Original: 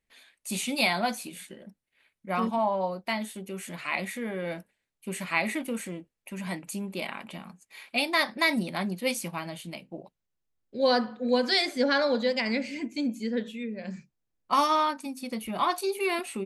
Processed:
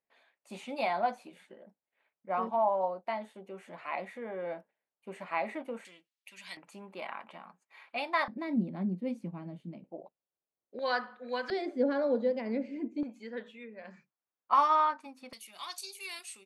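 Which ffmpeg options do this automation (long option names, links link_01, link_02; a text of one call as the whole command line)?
ffmpeg -i in.wav -af "asetnsamples=nb_out_samples=441:pad=0,asendcmd='5.85 bandpass f 3900;6.57 bandpass f 1000;8.28 bandpass f 220;9.84 bandpass f 620;10.79 bandpass f 1500;11.5 bandpass f 380;13.03 bandpass f 1100;15.33 bandpass f 6300',bandpass=frequency=730:width_type=q:width=1.3:csg=0" out.wav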